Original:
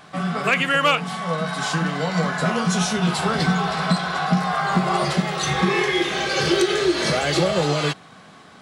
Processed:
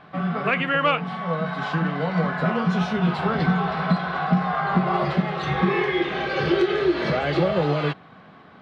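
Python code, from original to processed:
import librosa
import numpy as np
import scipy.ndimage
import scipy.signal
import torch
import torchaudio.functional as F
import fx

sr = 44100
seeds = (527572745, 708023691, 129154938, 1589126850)

y = fx.air_absorb(x, sr, metres=360.0)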